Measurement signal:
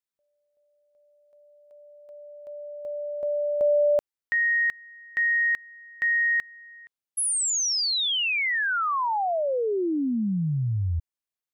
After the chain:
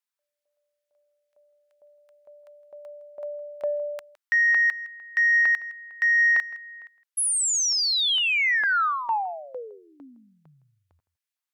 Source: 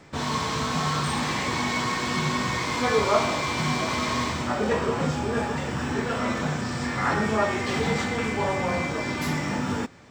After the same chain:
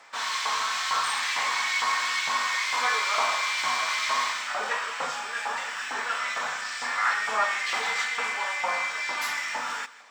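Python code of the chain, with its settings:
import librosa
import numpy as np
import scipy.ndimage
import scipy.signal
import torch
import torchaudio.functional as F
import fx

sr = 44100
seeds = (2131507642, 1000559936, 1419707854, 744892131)

y = fx.peak_eq(x, sr, hz=360.0, db=-8.0, octaves=0.24)
y = fx.filter_lfo_highpass(y, sr, shape='saw_up', hz=2.2, low_hz=860.0, high_hz=2000.0, q=1.2)
y = fx.cheby_harmonics(y, sr, harmonics=(5,), levels_db=(-28,), full_scale_db=-10.0)
y = y + 10.0 ** (-18.5 / 20.0) * np.pad(y, (int(162 * sr / 1000.0), 0))[:len(y)]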